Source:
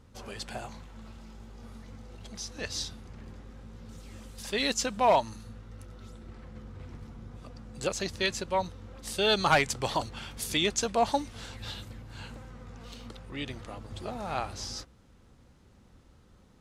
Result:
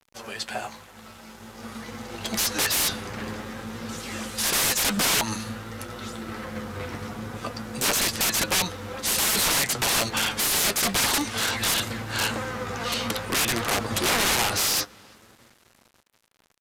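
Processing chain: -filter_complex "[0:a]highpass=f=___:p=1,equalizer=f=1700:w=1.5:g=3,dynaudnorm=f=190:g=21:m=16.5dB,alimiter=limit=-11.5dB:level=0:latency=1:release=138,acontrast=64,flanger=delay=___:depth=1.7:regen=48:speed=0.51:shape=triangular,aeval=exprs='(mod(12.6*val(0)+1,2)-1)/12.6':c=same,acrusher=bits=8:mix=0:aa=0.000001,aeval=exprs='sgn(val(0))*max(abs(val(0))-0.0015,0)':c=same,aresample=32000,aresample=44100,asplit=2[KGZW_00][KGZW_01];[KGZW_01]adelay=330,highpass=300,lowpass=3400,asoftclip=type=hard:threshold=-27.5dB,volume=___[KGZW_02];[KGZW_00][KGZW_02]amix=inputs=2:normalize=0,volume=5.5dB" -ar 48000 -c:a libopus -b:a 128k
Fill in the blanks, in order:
420, 8.4, -25dB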